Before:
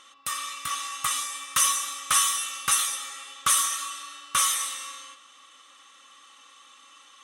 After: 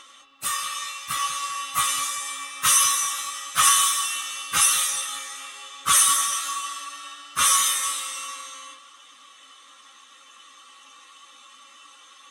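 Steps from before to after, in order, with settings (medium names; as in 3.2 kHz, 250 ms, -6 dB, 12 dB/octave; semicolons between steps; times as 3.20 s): plain phase-vocoder stretch 1.7×; filtered feedback delay 196 ms, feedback 39%, level -13 dB; trim +6 dB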